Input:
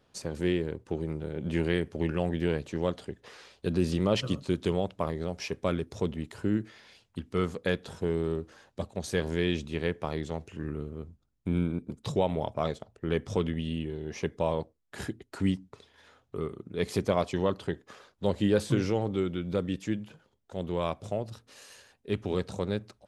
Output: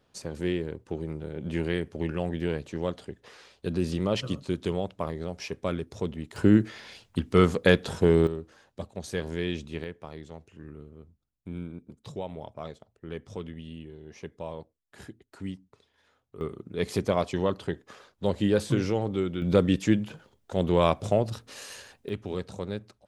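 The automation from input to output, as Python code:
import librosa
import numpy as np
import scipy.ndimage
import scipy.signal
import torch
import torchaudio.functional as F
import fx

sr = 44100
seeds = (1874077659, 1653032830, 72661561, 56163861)

y = fx.gain(x, sr, db=fx.steps((0.0, -1.0), (6.36, 9.0), (8.27, -2.5), (9.84, -9.0), (16.41, 1.0), (19.42, 8.5), (22.09, -3.0)))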